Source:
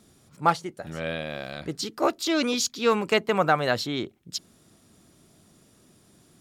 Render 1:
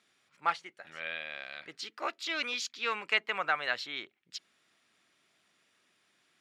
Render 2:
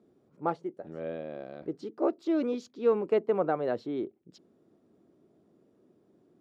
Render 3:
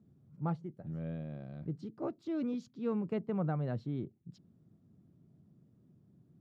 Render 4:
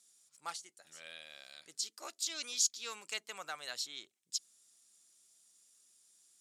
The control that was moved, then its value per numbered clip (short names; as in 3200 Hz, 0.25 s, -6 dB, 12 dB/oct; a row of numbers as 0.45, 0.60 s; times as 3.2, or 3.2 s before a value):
band-pass, frequency: 2200, 390, 140, 7700 Hz